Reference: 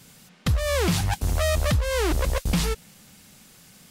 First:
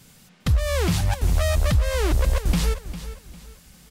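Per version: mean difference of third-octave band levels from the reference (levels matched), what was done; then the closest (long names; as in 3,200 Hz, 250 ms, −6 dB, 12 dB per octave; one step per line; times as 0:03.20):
2.5 dB: low-shelf EQ 74 Hz +9.5 dB
on a send: repeating echo 402 ms, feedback 32%, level −13 dB
on the sum: level −1.5 dB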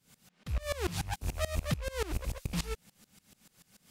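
4.5 dB: loose part that buzzes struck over −25 dBFS, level −28 dBFS
tremolo with a ramp in dB swelling 6.9 Hz, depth 22 dB
level −4.5 dB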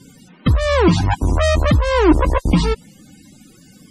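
8.5 dB: spectral peaks only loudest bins 64
hollow resonant body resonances 300/980 Hz, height 11 dB, ringing for 30 ms
level +7 dB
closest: first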